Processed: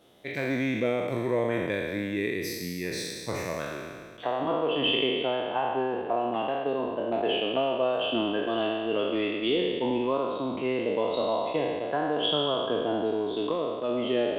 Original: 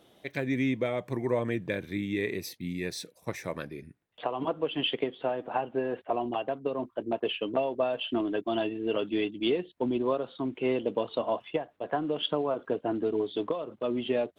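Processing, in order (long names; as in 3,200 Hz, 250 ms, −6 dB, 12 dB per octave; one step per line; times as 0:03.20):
peak hold with a decay on every bin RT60 1.88 s
level −1.5 dB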